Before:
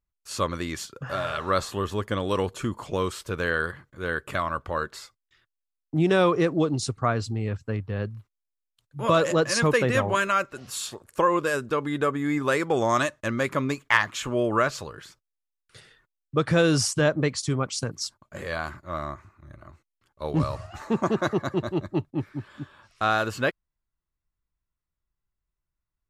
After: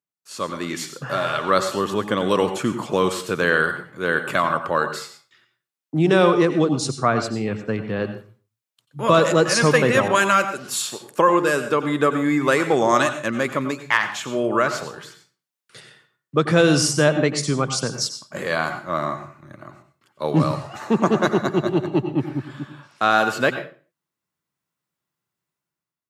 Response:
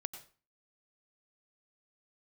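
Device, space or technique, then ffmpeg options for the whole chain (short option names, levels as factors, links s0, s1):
far laptop microphone: -filter_complex "[1:a]atrim=start_sample=2205[s0];[0:a][s0]afir=irnorm=-1:irlink=0,highpass=f=140:w=0.5412,highpass=f=140:w=1.3066,dynaudnorm=f=270:g=5:m=3.98,asettb=1/sr,asplit=3[s1][s2][s3];[s1]atrim=end=10.084[s4];[s2]atrim=start=10.08:end=10.82,asetpts=PTS-STARTPTS,afade=t=in:d=0.004:c=qsin,afade=t=out:st=0.736:d=0.004:c=qsin,adynamicequalizer=threshold=0.0355:dfrequency=3600:dqfactor=0.7:tfrequency=3600:tqfactor=0.7:attack=5:release=100:ratio=0.375:range=2:mode=boostabove:tftype=highshelf[s5];[s3]atrim=start=10.816[s6];[s4][s5]acrossfade=d=0.004:c1=hsin:c2=qsin[s7];[s7][s6]acrossfade=d=0.004:c1=qsin:c2=hsin,volume=0.841"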